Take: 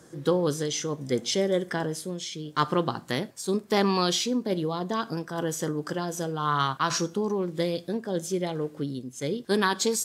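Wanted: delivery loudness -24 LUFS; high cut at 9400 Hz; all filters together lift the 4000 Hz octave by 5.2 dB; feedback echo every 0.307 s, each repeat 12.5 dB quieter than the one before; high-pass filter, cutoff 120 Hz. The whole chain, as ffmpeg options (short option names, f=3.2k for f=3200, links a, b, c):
-af "highpass=120,lowpass=9.4k,equalizer=f=4k:t=o:g=6.5,aecho=1:1:307|614|921:0.237|0.0569|0.0137,volume=3dB"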